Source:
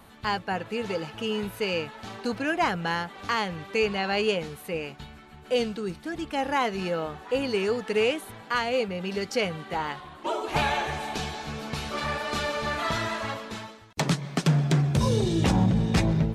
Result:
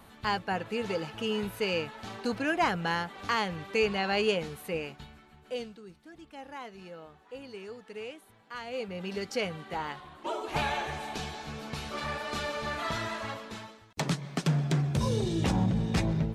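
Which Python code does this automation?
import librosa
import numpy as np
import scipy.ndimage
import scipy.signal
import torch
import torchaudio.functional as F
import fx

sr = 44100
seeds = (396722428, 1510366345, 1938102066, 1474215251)

y = fx.gain(x, sr, db=fx.line((4.76, -2.0), (5.52, -10.0), (5.83, -17.0), (8.44, -17.0), (8.99, -5.0)))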